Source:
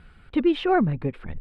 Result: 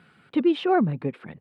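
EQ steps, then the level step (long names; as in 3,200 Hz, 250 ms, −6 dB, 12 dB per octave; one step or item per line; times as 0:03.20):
high-pass filter 140 Hz 24 dB per octave
dynamic equaliser 1,900 Hz, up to −4 dB, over −41 dBFS, Q 1.5
0.0 dB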